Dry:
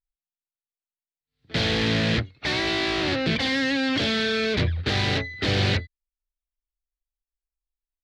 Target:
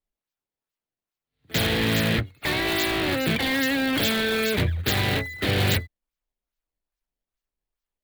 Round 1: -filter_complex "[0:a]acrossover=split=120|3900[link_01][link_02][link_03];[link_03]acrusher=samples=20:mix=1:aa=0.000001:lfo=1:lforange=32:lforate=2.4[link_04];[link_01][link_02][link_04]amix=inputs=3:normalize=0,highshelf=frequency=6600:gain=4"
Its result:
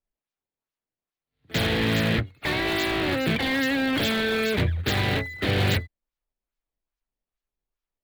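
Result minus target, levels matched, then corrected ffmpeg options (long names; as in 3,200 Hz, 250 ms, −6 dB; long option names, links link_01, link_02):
8,000 Hz band −4.5 dB
-filter_complex "[0:a]acrossover=split=120|3900[link_01][link_02][link_03];[link_03]acrusher=samples=20:mix=1:aa=0.000001:lfo=1:lforange=32:lforate=2.4[link_04];[link_01][link_02][link_04]amix=inputs=3:normalize=0,highshelf=frequency=6600:gain=14"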